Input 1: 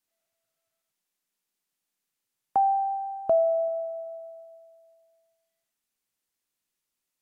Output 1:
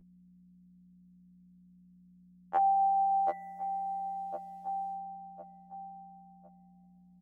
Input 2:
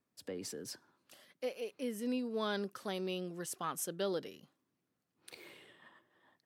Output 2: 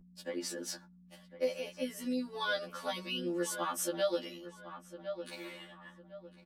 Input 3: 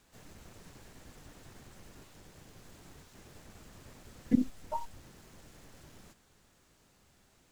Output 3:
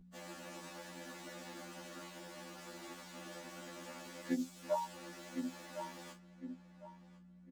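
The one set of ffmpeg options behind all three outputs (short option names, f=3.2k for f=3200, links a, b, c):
-filter_complex "[0:a]highshelf=f=5.8k:g=-7.5,agate=range=-29dB:threshold=-60dB:ratio=16:detection=peak,asplit=2[a][b];[b]adelay=1055,lowpass=f=2.8k:p=1,volume=-15dB,asplit=2[c][d];[d]adelay=1055,lowpass=f=2.8k:p=1,volume=0.31,asplit=2[e][f];[f]adelay=1055,lowpass=f=2.8k:p=1,volume=0.31[g];[c][e][g]amix=inputs=3:normalize=0[h];[a][h]amix=inputs=2:normalize=0,acontrast=57,highpass=f=210:w=0.5412,highpass=f=210:w=1.3066,aecho=1:1:3.5:0.88,acrossover=split=4100[i][j];[i]acompressor=threshold=-30dB:ratio=6[k];[k][j]amix=inputs=2:normalize=0,aeval=exprs='val(0)+0.00282*(sin(2*PI*60*n/s)+sin(2*PI*2*60*n/s)/2+sin(2*PI*3*60*n/s)/3+sin(2*PI*4*60*n/s)/4+sin(2*PI*5*60*n/s)/5)':c=same,equalizer=f=270:t=o:w=0.33:g=-8.5,afftfilt=real='re*2*eq(mod(b,4),0)':imag='im*2*eq(mod(b,4),0)':win_size=2048:overlap=0.75,volume=2.5dB"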